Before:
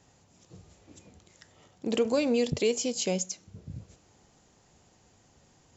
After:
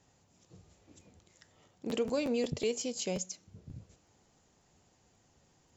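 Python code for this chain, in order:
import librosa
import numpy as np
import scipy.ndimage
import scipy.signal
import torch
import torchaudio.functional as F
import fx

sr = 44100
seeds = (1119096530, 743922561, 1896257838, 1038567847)

y = fx.buffer_crackle(x, sr, first_s=0.99, period_s=0.18, block=512, kind='repeat')
y = y * 10.0 ** (-6.0 / 20.0)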